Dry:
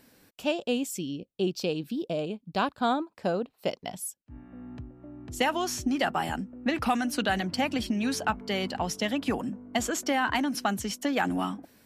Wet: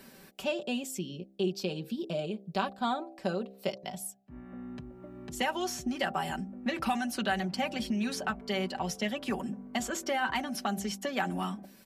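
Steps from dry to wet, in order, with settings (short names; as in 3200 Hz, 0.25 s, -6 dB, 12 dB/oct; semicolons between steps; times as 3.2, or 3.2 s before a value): comb 5.2 ms, depth 71%; de-hum 65.55 Hz, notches 12; three-band squash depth 40%; gain -5.5 dB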